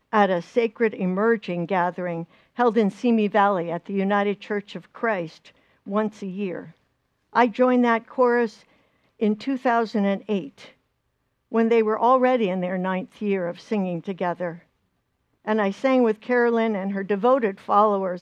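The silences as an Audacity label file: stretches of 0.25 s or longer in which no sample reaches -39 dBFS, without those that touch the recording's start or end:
2.240000	2.580000	silence
5.480000	5.870000	silence
6.700000	7.330000	silence
8.540000	9.200000	silence
10.690000	11.520000	silence
14.580000	15.460000	silence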